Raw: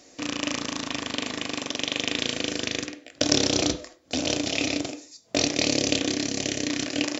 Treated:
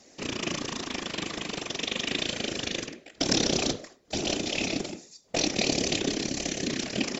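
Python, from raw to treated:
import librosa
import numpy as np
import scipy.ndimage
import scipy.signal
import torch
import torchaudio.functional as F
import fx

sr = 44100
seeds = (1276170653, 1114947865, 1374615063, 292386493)

y = fx.whisperise(x, sr, seeds[0])
y = F.gain(torch.from_numpy(y), -3.0).numpy()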